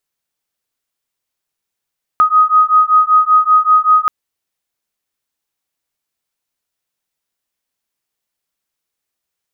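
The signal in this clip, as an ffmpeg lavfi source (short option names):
-f lavfi -i "aevalsrc='0.299*(sin(2*PI*1250*t)+sin(2*PI*1255.2*t))':d=1.88:s=44100"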